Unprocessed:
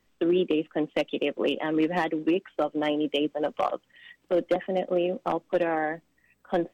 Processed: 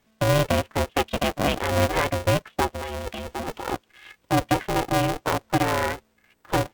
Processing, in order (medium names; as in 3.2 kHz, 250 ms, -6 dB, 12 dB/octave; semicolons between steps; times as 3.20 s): 2.75–3.73 s: compressor with a negative ratio -34 dBFS, ratio -1; polarity switched at an audio rate 220 Hz; trim +3 dB